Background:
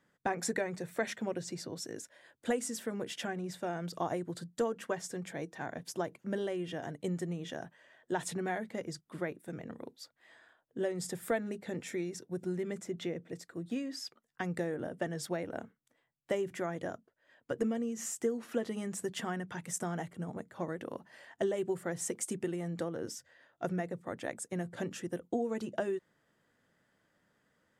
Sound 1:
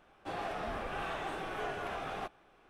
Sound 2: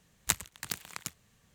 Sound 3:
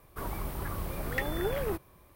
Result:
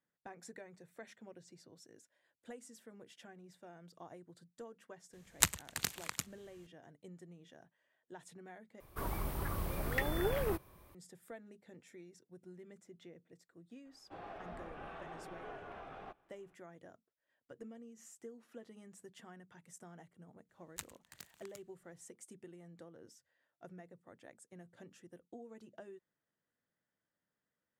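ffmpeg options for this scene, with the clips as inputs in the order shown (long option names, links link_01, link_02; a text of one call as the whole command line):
ffmpeg -i bed.wav -i cue0.wav -i cue1.wav -i cue2.wav -filter_complex "[2:a]asplit=2[link_01][link_02];[0:a]volume=-18dB[link_03];[link_01]aresample=32000,aresample=44100[link_04];[1:a]lowpass=frequency=1700:poles=1[link_05];[link_03]asplit=2[link_06][link_07];[link_06]atrim=end=8.804[link_08];[3:a]atrim=end=2.15,asetpts=PTS-STARTPTS,volume=-2.5dB[link_09];[link_07]atrim=start=10.946[link_10];[link_04]atrim=end=1.54,asetpts=PTS-STARTPTS,afade=type=in:duration=0.004:curve=hsin,afade=type=out:start_time=1.536:duration=0.004:curve=hsin,adelay=226233S[link_11];[link_05]atrim=end=2.69,asetpts=PTS-STARTPTS,volume=-9.5dB,afade=type=in:duration=0.004:curve=hsin,afade=type=out:start_time=2.686:duration=0.004:curve=hsin,adelay=13850[link_12];[link_02]atrim=end=1.54,asetpts=PTS-STARTPTS,volume=-17.5dB,afade=type=in:duration=0.004:curve=hsin,afade=type=out:start_time=1.536:duration=0.004:curve=hsin,adelay=20490[link_13];[link_08][link_09]acrossfade=duration=0.004:curve1=hsin:curve2=hsin[link_14];[link_14][link_10]acrossfade=duration=0.004:curve1=hsin:curve2=hsin[link_15];[link_15][link_11][link_12][link_13]amix=inputs=4:normalize=0" out.wav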